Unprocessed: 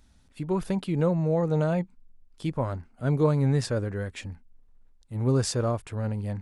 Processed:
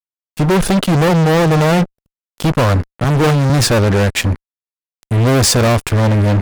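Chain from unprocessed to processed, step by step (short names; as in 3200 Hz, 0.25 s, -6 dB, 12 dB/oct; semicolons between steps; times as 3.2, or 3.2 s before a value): fuzz box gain 38 dB, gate -45 dBFS; 3.04–3.5 three-band expander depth 70%; gain +3 dB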